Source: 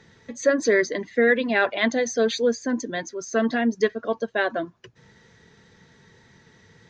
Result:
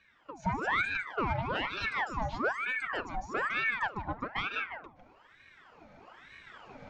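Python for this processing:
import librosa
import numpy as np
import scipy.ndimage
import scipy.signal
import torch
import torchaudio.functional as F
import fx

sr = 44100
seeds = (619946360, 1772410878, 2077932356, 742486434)

y = fx.recorder_agc(x, sr, target_db=-11.0, rise_db_per_s=6.7, max_gain_db=30)
y = fx.bandpass_q(y, sr, hz=420.0, q=0.52)
y = fx.peak_eq(y, sr, hz=580.0, db=-4.0, octaves=0.28)
y = fx.cheby_harmonics(y, sr, harmonics=(5,), levels_db=(-24,), full_scale_db=-10.0)
y = y + 10.0 ** (-7.0 / 20.0) * np.pad(y, (int(153 * sr / 1000.0), 0))[:len(y)]
y = fx.room_shoebox(y, sr, seeds[0], volume_m3=3300.0, walls='furnished', distance_m=0.92)
y = fx.ring_lfo(y, sr, carrier_hz=1200.0, swing_pct=70, hz=1.1)
y = y * librosa.db_to_amplitude(-8.0)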